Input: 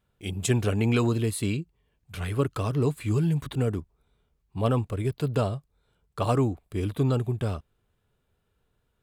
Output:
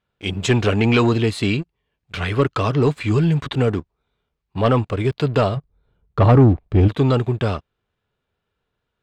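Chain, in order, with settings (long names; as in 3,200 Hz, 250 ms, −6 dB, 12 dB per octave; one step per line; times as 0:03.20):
spectral tilt +2 dB per octave, from 0:05.56 −1.5 dB per octave, from 0:06.87 +2 dB per octave
leveller curve on the samples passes 2
high-frequency loss of the air 170 metres
level +5 dB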